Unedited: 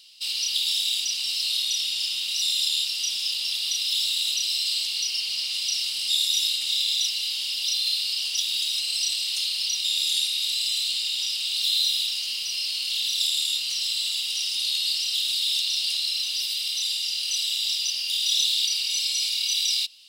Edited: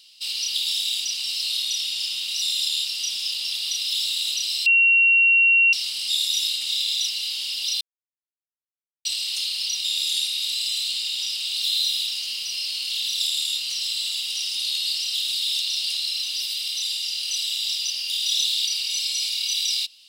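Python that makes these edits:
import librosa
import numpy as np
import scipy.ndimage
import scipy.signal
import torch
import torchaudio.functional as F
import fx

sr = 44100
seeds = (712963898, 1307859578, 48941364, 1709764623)

y = fx.edit(x, sr, fx.bleep(start_s=4.66, length_s=1.07, hz=2740.0, db=-13.0),
    fx.silence(start_s=7.81, length_s=1.24), tone=tone)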